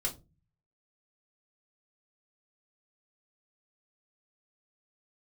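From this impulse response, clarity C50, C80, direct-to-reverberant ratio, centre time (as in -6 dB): 15.5 dB, 22.0 dB, -1.0 dB, 12 ms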